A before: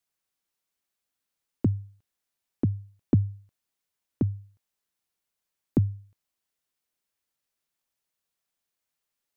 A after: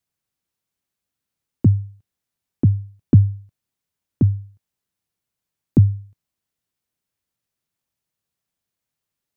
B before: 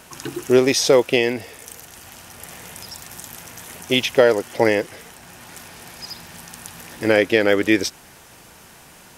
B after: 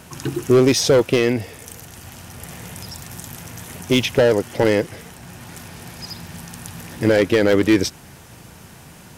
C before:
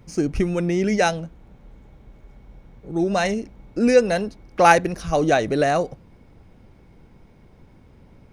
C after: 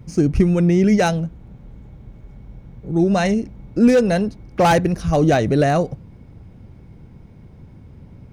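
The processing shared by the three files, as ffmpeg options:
-af "asoftclip=type=hard:threshold=-12dB,equalizer=f=110:t=o:w=2.5:g=11.5"

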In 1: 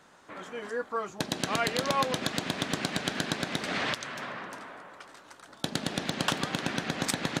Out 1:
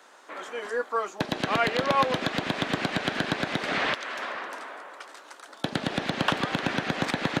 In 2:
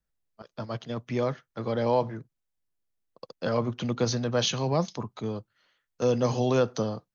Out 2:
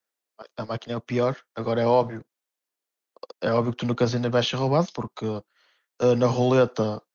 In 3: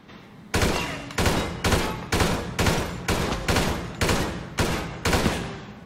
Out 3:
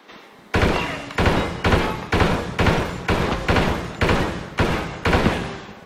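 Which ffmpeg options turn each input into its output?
-filter_complex "[0:a]acrossover=split=290|1400[a][b][c];[a]aeval=exprs='sgn(val(0))*max(abs(val(0))-0.00596,0)':c=same[d];[d][b][c]amix=inputs=3:normalize=0,acrossover=split=3600[e][f];[f]acompressor=threshold=-47dB:ratio=4:attack=1:release=60[g];[e][g]amix=inputs=2:normalize=0,volume=5dB"

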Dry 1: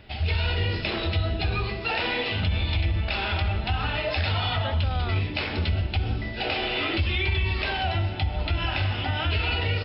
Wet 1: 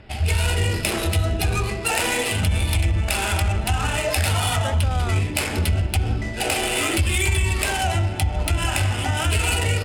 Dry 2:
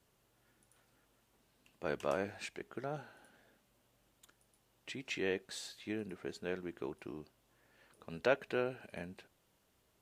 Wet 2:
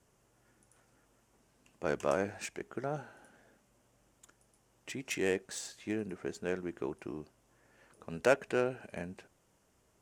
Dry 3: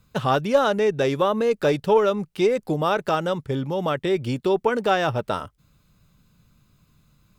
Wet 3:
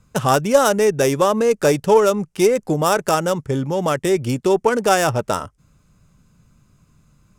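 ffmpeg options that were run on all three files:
-af "adynamicsmooth=sensitivity=3:basefreq=3.3k,aexciter=amount=9.2:drive=4.4:freq=5.7k,volume=4.5dB"

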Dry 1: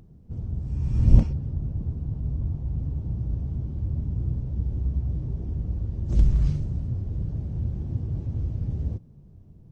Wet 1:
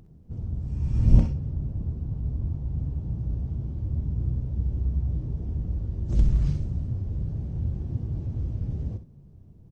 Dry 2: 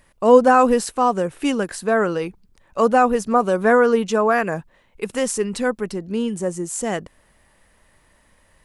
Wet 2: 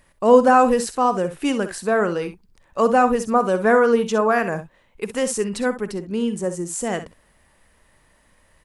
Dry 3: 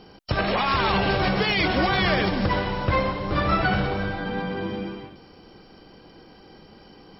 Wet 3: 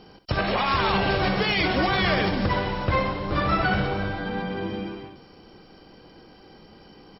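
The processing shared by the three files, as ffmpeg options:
-af "aecho=1:1:51|64:0.15|0.237,volume=-1dB"

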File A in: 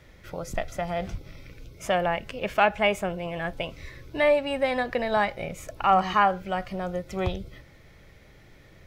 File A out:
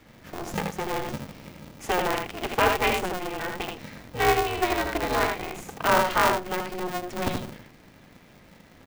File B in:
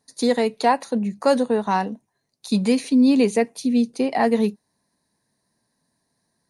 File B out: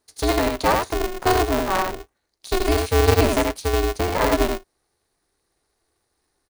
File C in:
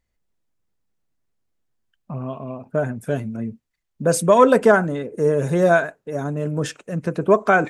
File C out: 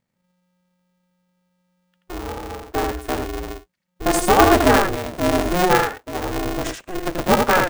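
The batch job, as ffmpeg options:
-filter_complex "[0:a]asplit=2[a][b];[b]aecho=0:1:81:0.631[c];[a][c]amix=inputs=2:normalize=0,aeval=exprs='val(0)*sgn(sin(2*PI*180*n/s))':c=same,volume=-1.5dB"

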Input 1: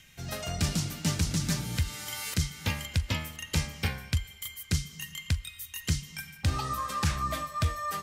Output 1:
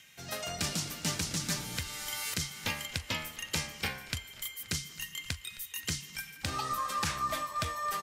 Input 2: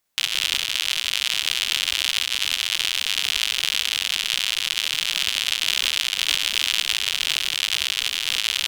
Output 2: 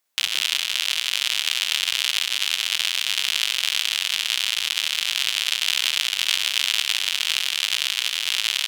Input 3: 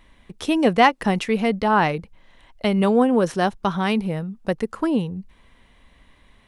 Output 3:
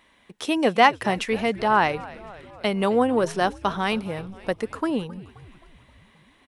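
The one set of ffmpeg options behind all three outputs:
-filter_complex "[0:a]highpass=f=380:p=1,asplit=7[a][b][c][d][e][f][g];[b]adelay=264,afreqshift=-97,volume=-19dB[h];[c]adelay=528,afreqshift=-194,volume=-23dB[i];[d]adelay=792,afreqshift=-291,volume=-27dB[j];[e]adelay=1056,afreqshift=-388,volume=-31dB[k];[f]adelay=1320,afreqshift=-485,volume=-35.1dB[l];[g]adelay=1584,afreqshift=-582,volume=-39.1dB[m];[a][h][i][j][k][l][m]amix=inputs=7:normalize=0"

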